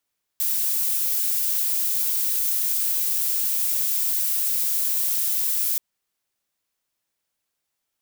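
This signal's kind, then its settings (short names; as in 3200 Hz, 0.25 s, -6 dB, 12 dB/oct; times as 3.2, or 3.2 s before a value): noise violet, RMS -23 dBFS 5.38 s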